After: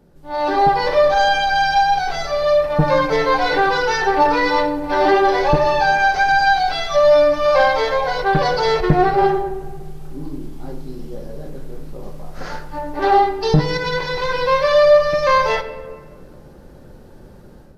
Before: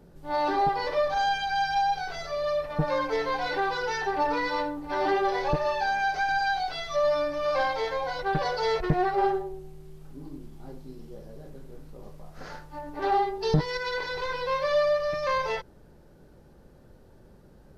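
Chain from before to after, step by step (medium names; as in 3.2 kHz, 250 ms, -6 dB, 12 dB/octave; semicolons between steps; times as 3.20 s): level rider gain up to 11 dB; on a send: reverberation RT60 1.9 s, pre-delay 4 ms, DRR 10 dB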